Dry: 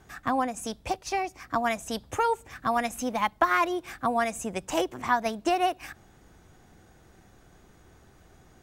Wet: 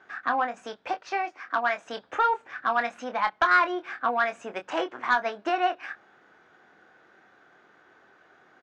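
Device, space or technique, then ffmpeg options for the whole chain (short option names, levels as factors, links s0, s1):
intercom: -filter_complex "[0:a]highpass=380,lowpass=3500,equalizer=f=1500:t=o:w=0.58:g=9,asoftclip=type=tanh:threshold=0.211,asplit=2[s0][s1];[s1]adelay=25,volume=0.376[s2];[s0][s2]amix=inputs=2:normalize=0,asettb=1/sr,asplit=3[s3][s4][s5];[s3]atrim=end=1.254[s6];[s4]atrim=start=1.25:end=1.86,asetpts=PTS-STARTPTS,afade=t=in:d=0.004:c=qsin,afade=t=out:st=0.606:d=0.004:c=qsin,highpass=f=250:p=1[s7];[s5]atrim=start=1.856[s8];[s6][s7]acrossfade=d=0.004:c1=hsin:c2=qsin[s9];[s9][s8]acrossfade=d=0.004:c1=qsin:c2=hsin,lowpass=6500"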